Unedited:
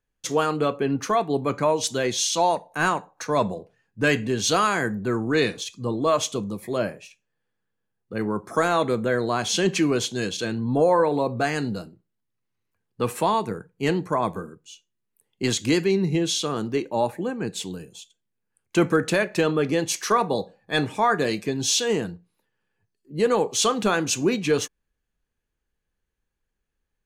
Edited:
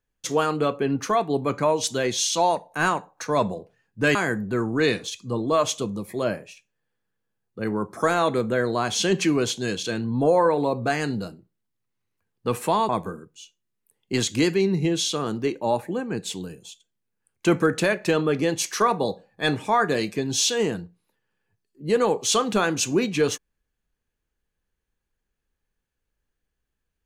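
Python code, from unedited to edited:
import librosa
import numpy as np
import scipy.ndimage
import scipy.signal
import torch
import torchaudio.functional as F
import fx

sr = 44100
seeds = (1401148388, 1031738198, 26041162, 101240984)

y = fx.edit(x, sr, fx.cut(start_s=4.15, length_s=0.54),
    fx.cut(start_s=13.43, length_s=0.76), tone=tone)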